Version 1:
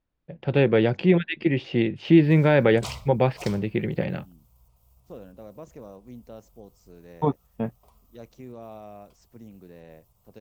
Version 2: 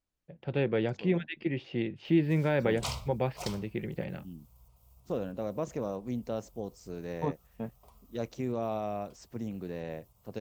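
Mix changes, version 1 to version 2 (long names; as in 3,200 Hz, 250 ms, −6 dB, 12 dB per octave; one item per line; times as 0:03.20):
first voice −9.5 dB
second voice +8.5 dB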